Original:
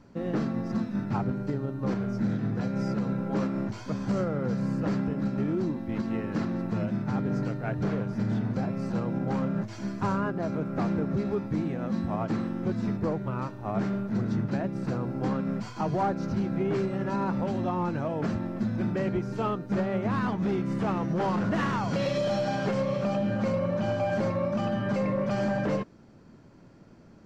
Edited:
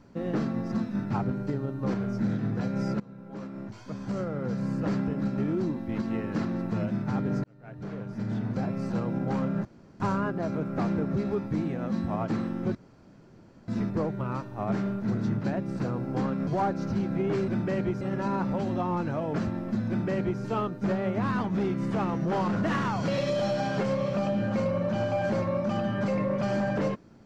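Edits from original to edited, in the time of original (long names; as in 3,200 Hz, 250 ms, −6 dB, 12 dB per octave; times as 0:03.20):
0:03.00–0:04.94: fade in, from −20.5 dB
0:07.44–0:08.67: fade in
0:09.65–0:10.00: fill with room tone
0:12.75: splice in room tone 0.93 s
0:15.54–0:15.88: remove
0:18.76–0:19.29: duplicate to 0:16.89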